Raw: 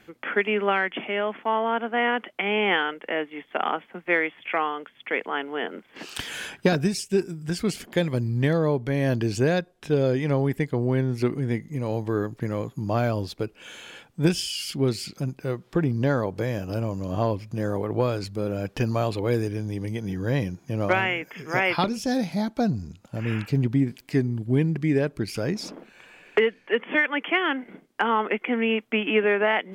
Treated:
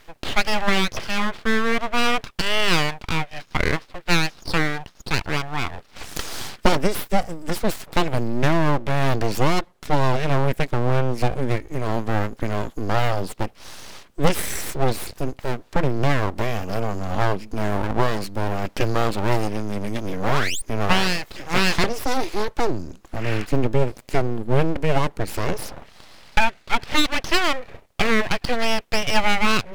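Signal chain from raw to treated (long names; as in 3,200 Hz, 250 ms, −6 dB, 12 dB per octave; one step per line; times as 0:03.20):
sound drawn into the spectrogram rise, 0:20.23–0:20.62, 540–4,800 Hz −29 dBFS
full-wave rectification
level +6 dB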